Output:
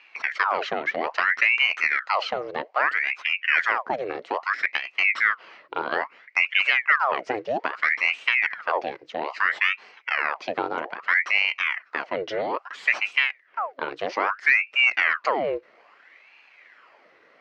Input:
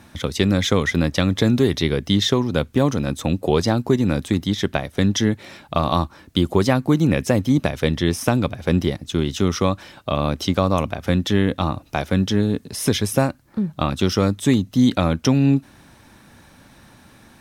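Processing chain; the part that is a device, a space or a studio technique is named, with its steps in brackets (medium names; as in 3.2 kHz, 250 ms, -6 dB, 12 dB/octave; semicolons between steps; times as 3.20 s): 12.27–12.86 s: comb 6.4 ms, depth 97%; voice changer toy (ring modulator with a swept carrier 1.4 kHz, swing 85%, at 0.61 Hz; cabinet simulation 470–4000 Hz, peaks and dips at 850 Hz -3 dB, 2 kHz +5 dB, 3.6 kHz -10 dB); trim -2 dB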